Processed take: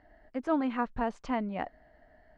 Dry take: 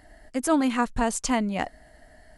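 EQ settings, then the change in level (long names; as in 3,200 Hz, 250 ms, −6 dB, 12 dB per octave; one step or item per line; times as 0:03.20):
high-frequency loss of the air 230 metres
low-shelf EQ 270 Hz −7 dB
high-shelf EQ 2,600 Hz −10.5 dB
−3.0 dB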